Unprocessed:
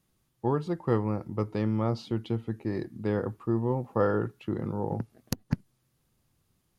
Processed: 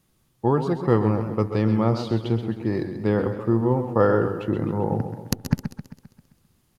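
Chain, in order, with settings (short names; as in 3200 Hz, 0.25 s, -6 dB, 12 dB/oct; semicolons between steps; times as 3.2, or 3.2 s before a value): 2.52–4.18 median filter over 3 samples; echo 0.124 s -15 dB; warbling echo 0.132 s, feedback 52%, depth 115 cents, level -10 dB; gain +6.5 dB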